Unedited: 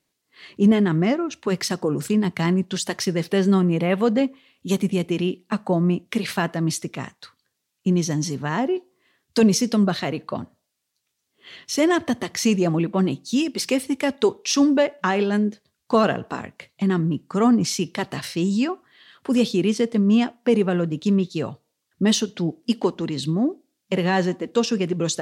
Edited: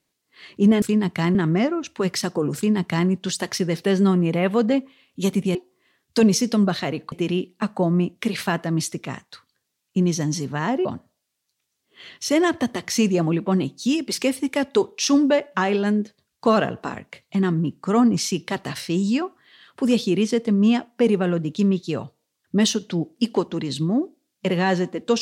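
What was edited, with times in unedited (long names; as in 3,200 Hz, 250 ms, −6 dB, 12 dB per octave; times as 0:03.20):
0:02.03–0:02.56: duplicate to 0:00.82
0:08.75–0:10.32: move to 0:05.02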